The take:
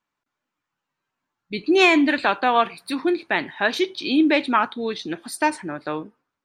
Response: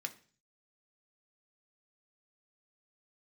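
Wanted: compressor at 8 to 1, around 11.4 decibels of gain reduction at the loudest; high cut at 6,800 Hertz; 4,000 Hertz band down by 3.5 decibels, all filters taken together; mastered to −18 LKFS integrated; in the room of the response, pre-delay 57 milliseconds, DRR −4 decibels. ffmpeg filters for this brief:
-filter_complex "[0:a]lowpass=6800,equalizer=frequency=4000:width_type=o:gain=-4,acompressor=threshold=-25dB:ratio=8,asplit=2[link_01][link_02];[1:a]atrim=start_sample=2205,adelay=57[link_03];[link_02][link_03]afir=irnorm=-1:irlink=0,volume=4.5dB[link_04];[link_01][link_04]amix=inputs=2:normalize=0,volume=8dB"

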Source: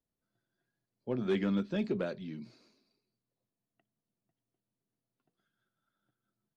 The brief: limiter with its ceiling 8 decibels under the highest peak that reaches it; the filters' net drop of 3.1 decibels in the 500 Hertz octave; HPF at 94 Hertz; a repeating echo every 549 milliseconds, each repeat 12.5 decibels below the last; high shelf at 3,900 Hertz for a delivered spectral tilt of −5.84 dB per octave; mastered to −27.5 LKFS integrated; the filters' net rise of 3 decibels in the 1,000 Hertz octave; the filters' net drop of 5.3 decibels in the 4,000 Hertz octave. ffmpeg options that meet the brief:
ffmpeg -i in.wav -af "highpass=94,equalizer=frequency=500:width_type=o:gain=-5.5,equalizer=frequency=1000:width_type=o:gain=6.5,highshelf=frequency=3900:gain=-4,equalizer=frequency=4000:width_type=o:gain=-5,alimiter=level_in=5.5dB:limit=-24dB:level=0:latency=1,volume=-5.5dB,aecho=1:1:549|1098|1647:0.237|0.0569|0.0137,volume=12.5dB" out.wav

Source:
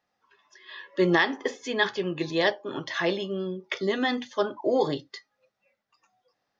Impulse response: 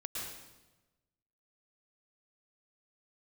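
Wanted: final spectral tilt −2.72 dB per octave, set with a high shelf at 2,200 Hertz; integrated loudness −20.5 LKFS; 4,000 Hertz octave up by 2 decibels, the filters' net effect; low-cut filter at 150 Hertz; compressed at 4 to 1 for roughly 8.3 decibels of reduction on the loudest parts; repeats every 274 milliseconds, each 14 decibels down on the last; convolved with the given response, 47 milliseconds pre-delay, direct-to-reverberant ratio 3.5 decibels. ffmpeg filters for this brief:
-filter_complex "[0:a]highpass=150,highshelf=frequency=2200:gain=-4,equalizer=frequency=4000:width_type=o:gain=6,acompressor=threshold=-28dB:ratio=4,aecho=1:1:274|548:0.2|0.0399,asplit=2[link_01][link_02];[1:a]atrim=start_sample=2205,adelay=47[link_03];[link_02][link_03]afir=irnorm=-1:irlink=0,volume=-4.5dB[link_04];[link_01][link_04]amix=inputs=2:normalize=0,volume=10.5dB"

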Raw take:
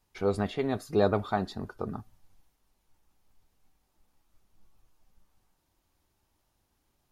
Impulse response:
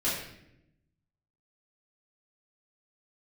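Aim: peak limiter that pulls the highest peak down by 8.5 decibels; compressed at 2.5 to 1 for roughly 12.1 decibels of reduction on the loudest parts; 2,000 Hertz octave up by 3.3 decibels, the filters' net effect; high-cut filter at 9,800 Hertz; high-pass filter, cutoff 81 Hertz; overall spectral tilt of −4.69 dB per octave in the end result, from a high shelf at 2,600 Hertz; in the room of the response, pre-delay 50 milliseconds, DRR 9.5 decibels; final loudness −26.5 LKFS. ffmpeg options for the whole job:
-filter_complex "[0:a]highpass=81,lowpass=9800,equalizer=frequency=2000:width_type=o:gain=3,highshelf=frequency=2600:gain=4,acompressor=threshold=-38dB:ratio=2.5,alimiter=level_in=7dB:limit=-24dB:level=0:latency=1,volume=-7dB,asplit=2[link_01][link_02];[1:a]atrim=start_sample=2205,adelay=50[link_03];[link_02][link_03]afir=irnorm=-1:irlink=0,volume=-18.5dB[link_04];[link_01][link_04]amix=inputs=2:normalize=0,volume=16dB"

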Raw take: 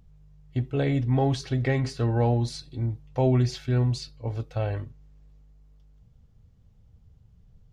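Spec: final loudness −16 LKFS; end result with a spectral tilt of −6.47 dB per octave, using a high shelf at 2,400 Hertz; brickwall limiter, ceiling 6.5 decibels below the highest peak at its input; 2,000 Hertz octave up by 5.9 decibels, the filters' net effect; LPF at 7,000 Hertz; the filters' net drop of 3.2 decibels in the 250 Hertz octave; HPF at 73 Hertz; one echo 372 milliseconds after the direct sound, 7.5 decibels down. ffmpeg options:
ffmpeg -i in.wav -af "highpass=73,lowpass=7000,equalizer=frequency=250:width_type=o:gain=-4,equalizer=frequency=2000:width_type=o:gain=9,highshelf=frequency=2400:gain=-5,alimiter=limit=-20dB:level=0:latency=1,aecho=1:1:372:0.422,volume=13.5dB" out.wav

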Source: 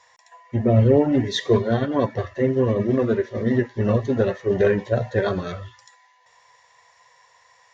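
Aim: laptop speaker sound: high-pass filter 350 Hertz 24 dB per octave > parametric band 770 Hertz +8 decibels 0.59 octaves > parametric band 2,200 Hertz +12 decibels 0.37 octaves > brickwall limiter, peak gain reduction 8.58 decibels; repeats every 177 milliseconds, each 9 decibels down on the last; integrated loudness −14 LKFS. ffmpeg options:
ffmpeg -i in.wav -af "highpass=frequency=350:width=0.5412,highpass=frequency=350:width=1.3066,equalizer=frequency=770:width_type=o:width=0.59:gain=8,equalizer=frequency=2200:width_type=o:width=0.37:gain=12,aecho=1:1:177|354|531|708:0.355|0.124|0.0435|0.0152,volume=10.5dB,alimiter=limit=-3.5dB:level=0:latency=1" out.wav

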